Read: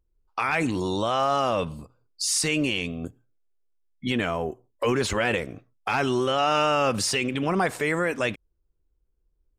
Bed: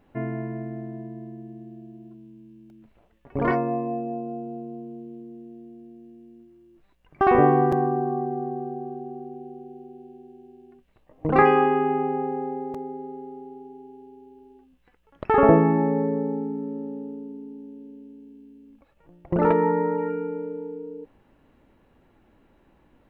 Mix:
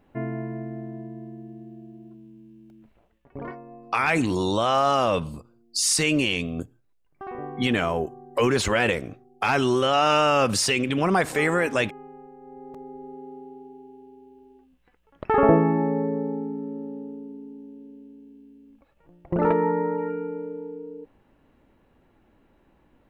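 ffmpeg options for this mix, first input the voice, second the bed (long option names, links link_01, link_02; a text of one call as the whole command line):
ffmpeg -i stem1.wav -i stem2.wav -filter_complex "[0:a]adelay=3550,volume=2.5dB[link_01];[1:a]volume=16.5dB,afade=type=out:start_time=2.87:duration=0.68:silence=0.125893,afade=type=in:start_time=12.4:duration=0.92:silence=0.141254[link_02];[link_01][link_02]amix=inputs=2:normalize=0" out.wav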